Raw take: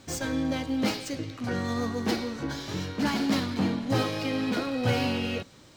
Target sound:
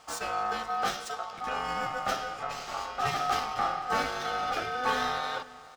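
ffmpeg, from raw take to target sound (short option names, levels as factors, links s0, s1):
-filter_complex "[0:a]aeval=exprs='val(0)*sin(2*PI*1000*n/s)':c=same,asplit=2[s0][s1];[s1]adelay=495.6,volume=0.126,highshelf=f=4000:g=-11.2[s2];[s0][s2]amix=inputs=2:normalize=0"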